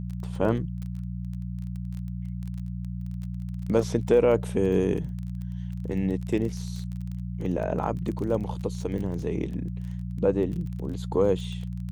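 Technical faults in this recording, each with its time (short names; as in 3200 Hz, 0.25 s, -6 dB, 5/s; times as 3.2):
crackle 23/s -33 dBFS
hum 60 Hz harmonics 3 -33 dBFS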